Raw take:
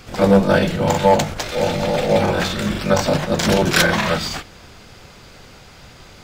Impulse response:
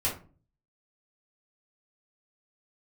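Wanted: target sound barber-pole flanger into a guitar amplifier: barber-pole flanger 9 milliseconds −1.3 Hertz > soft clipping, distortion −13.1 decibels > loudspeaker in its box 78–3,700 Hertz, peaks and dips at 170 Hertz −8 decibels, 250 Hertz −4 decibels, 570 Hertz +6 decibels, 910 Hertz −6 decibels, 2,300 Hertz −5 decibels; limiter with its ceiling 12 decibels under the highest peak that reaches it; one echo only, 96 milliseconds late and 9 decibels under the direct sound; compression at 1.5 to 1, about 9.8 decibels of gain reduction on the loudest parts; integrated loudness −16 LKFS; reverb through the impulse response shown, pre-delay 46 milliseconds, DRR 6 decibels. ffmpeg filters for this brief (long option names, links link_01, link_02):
-filter_complex "[0:a]acompressor=threshold=-37dB:ratio=1.5,alimiter=limit=-23.5dB:level=0:latency=1,aecho=1:1:96:0.355,asplit=2[link_01][link_02];[1:a]atrim=start_sample=2205,adelay=46[link_03];[link_02][link_03]afir=irnorm=-1:irlink=0,volume=-13.5dB[link_04];[link_01][link_04]amix=inputs=2:normalize=0,asplit=2[link_05][link_06];[link_06]adelay=9,afreqshift=-1.3[link_07];[link_05][link_07]amix=inputs=2:normalize=1,asoftclip=threshold=-29.5dB,highpass=78,equalizer=frequency=170:width_type=q:width=4:gain=-8,equalizer=frequency=250:width_type=q:width=4:gain=-4,equalizer=frequency=570:width_type=q:width=4:gain=6,equalizer=frequency=910:width_type=q:width=4:gain=-6,equalizer=frequency=2300:width_type=q:width=4:gain=-5,lowpass=frequency=3700:width=0.5412,lowpass=frequency=3700:width=1.3066,volume=20.5dB"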